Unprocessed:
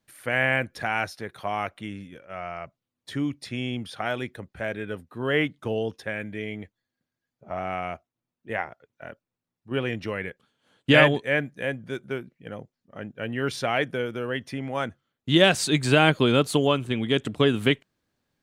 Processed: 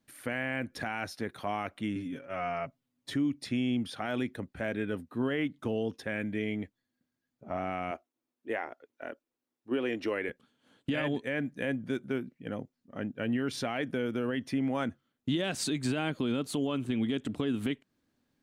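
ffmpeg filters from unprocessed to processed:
-filter_complex "[0:a]asettb=1/sr,asplit=3[a][b][c];[a]atrim=end=1.954[d];[b]atrim=start=1.95:end=3.14,asetpts=PTS-STARTPTS,afade=t=in:d=0.004:c=qsin,afade=t=out:st=1.186:d=0.004:c=qsin,aecho=1:1:7.3:0.8,atrim=end_sample=52479[e];[c]atrim=start=3.136[f];[d][e]acrossfade=d=0.004:c1=hsin:c2=qsin[g];[g][f]acrossfade=d=0.004:c1=qsin:c2=hsin,asettb=1/sr,asplit=3[h][i][j];[h]atrim=end=7.914[k];[i]atrim=start=7.91:end=10.29,asetpts=PTS-STARTPTS,afade=t=in:d=0.004:c=qsin,afade=t=out:st=2.376:d=0.004:c=qsin,lowshelf=f=240:t=q:w=1.5:g=-11.5[l];[j]atrim=start=10.286[m];[k][l]acrossfade=d=0.004:c1=hsin:c2=qsin[n];[n][m]acrossfade=d=0.004:c1=qsin:c2=hsin,equalizer=f=260:w=2.2:g=9,acompressor=threshold=-23dB:ratio=6,alimiter=limit=-19.5dB:level=0:latency=1:release=29,volume=-2dB"

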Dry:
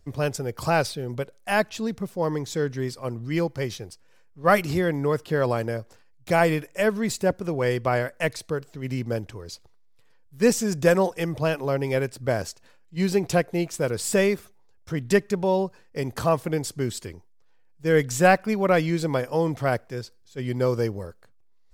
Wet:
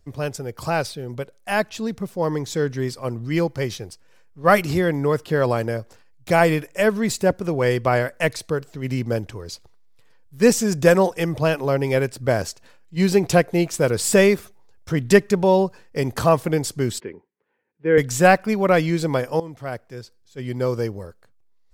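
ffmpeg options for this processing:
-filter_complex "[0:a]asettb=1/sr,asplit=3[a][b][c];[a]atrim=end=17.004[d];[b]atrim=start=17:end=17.98,asetpts=PTS-STARTPTS,afade=t=in:d=0.004:c=qsin,afade=t=out:st=0.976:d=0.004:c=qsin,highpass=220,equalizer=f=220:t=q:w=4:g=3,equalizer=f=410:t=q:w=4:g=5,equalizer=f=680:t=q:w=4:g=-9,equalizer=f=1.2k:t=q:w=4:g=-6,lowpass=f=2.4k:w=0.5412,lowpass=f=2.4k:w=1.3066[e];[c]atrim=start=17.976[f];[d][e]acrossfade=d=0.004:c1=hsin:c2=qsin[g];[g][f]acrossfade=d=0.004:c1=qsin:c2=hsin,asplit=2[h][i];[h]atrim=end=19.4,asetpts=PTS-STARTPTS,afade=t=out:st=19.396:d=0.004:c=hsin:silence=0.16788[j];[i]atrim=start=19.4,asetpts=PTS-STARTPTS,afade=t=in:d=1.31:silence=0.16788[k];[j][k]concat=n=2:v=0:a=1,dynaudnorm=f=480:g=9:m=11.5dB,volume=-1dB"

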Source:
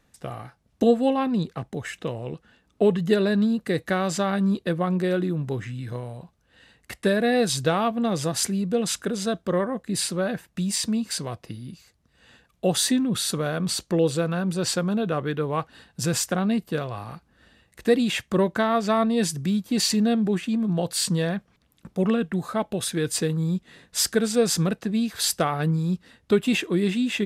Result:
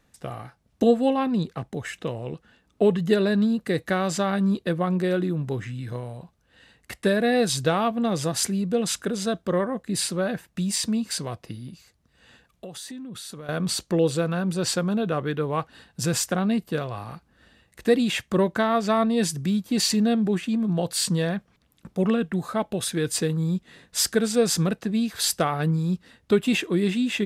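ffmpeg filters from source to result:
-filter_complex "[0:a]asettb=1/sr,asplit=3[a][b][c];[a]atrim=end=11.684[d];[b]atrim=start=11.68:end=13.49,asetpts=PTS-STARTPTS,afade=t=in:d=0.004:c=qsin,afade=t=out:st=1.806:d=0.004:c=qsin,acompressor=threshold=-36dB:ratio=6:attack=3.2:release=140:knee=1:detection=peak[e];[c]atrim=start=13.486[f];[d][e]acrossfade=d=0.004:c1=hsin:c2=qsin[g];[g][f]acrossfade=d=0.004:c1=qsin:c2=hsin"

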